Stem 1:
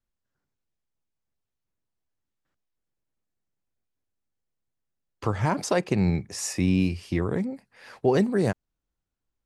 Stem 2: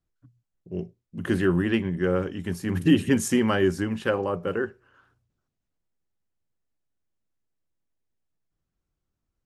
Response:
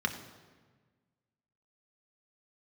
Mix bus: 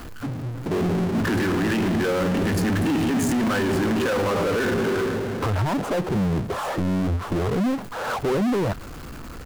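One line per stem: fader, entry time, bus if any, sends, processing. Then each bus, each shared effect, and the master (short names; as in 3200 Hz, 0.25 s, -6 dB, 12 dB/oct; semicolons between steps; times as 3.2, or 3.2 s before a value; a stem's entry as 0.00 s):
-4.5 dB, 0.20 s, no send, elliptic low-pass 1400 Hz, stop band 40 dB; reverb removal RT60 0.57 s
-5.5 dB, 0.00 s, send -5.5 dB, dry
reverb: on, RT60 1.4 s, pre-delay 3 ms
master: power-law curve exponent 0.35; limiter -18.5 dBFS, peak gain reduction 9.5 dB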